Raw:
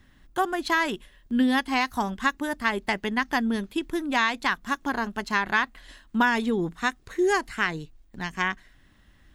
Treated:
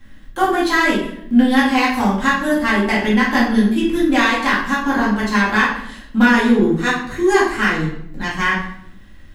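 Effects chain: in parallel at -4 dB: hard clip -23.5 dBFS, distortion -8 dB; on the sum: shoebox room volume 150 m³, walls mixed, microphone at 2.2 m; gain -2 dB

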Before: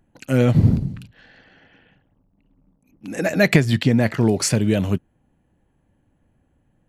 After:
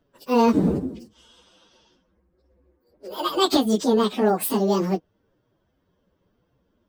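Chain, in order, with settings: pitch shift by moving bins +11 st

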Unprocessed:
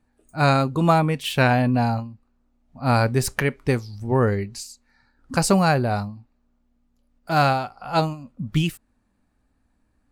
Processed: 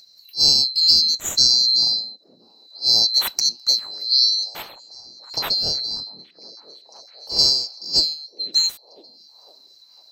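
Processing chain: band-swap scrambler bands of 4000 Hz; 4.62–7.39 high shelf 3400 Hz -11 dB; upward compressor, threshold -41 dBFS; delay with a stepping band-pass 0.505 s, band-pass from 250 Hz, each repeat 0.7 oct, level -9 dB; gain +2 dB

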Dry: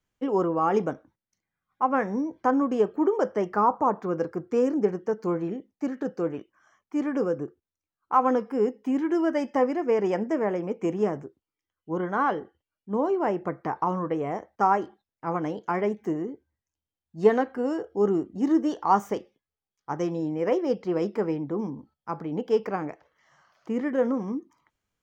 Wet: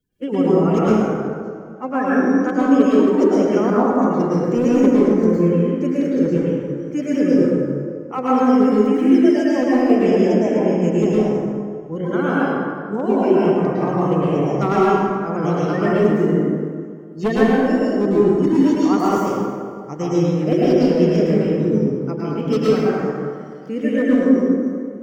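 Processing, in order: bin magnitudes rounded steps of 30 dB; bell 1000 Hz -13.5 dB 1.1 oct; in parallel at 0 dB: vocal rider 2 s; on the sum: hard clip -13.5 dBFS, distortion -17 dB; on a send: thinning echo 0.102 s, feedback 76%, level -24 dB; on the sum: plate-style reverb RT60 2 s, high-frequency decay 0.5×, pre-delay 95 ms, DRR -7.5 dB; gain -1 dB

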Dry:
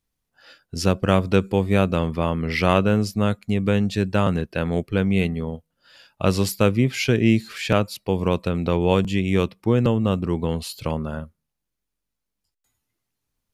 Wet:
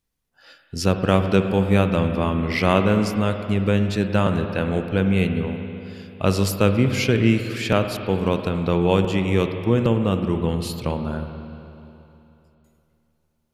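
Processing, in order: spring tank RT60 3 s, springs 52/60 ms, chirp 60 ms, DRR 6.5 dB

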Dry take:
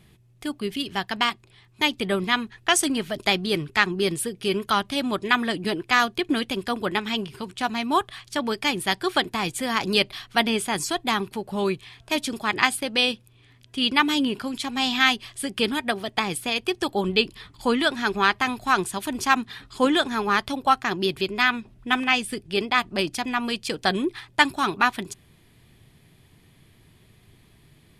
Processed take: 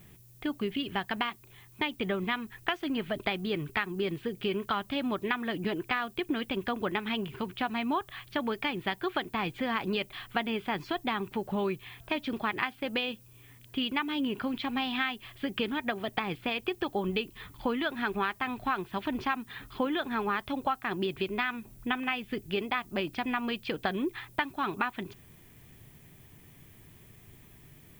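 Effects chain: compressor, threshold -27 dBFS, peak gain reduction 15 dB; LPF 3200 Hz 24 dB/oct; added noise violet -60 dBFS

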